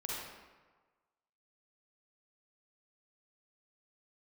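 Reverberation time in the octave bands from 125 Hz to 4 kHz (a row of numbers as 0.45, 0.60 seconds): 1.3, 1.2, 1.3, 1.4, 1.2, 0.85 seconds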